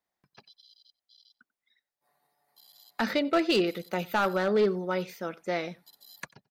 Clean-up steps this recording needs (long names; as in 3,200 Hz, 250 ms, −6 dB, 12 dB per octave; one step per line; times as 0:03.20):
clipped peaks rebuilt −18 dBFS
echo removal 92 ms −24 dB